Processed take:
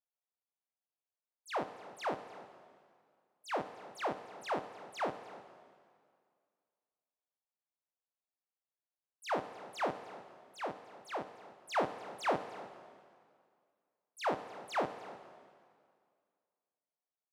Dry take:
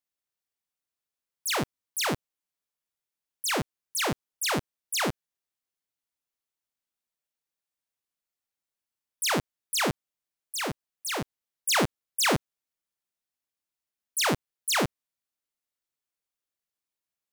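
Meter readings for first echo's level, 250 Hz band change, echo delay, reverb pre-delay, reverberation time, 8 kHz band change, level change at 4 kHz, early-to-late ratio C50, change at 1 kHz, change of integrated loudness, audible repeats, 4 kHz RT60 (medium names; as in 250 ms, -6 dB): -18.5 dB, -12.0 dB, 303 ms, 7 ms, 2.1 s, -26.0 dB, -19.5 dB, 10.5 dB, -4.5 dB, -10.5 dB, 1, 1.9 s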